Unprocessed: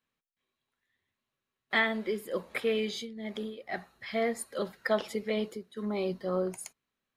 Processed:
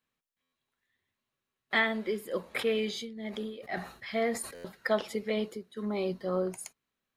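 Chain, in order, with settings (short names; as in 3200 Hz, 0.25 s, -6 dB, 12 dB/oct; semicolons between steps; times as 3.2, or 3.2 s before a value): stuck buffer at 0.42/4.54, samples 512, times 8; 2.41–4.62 sustainer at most 110 dB/s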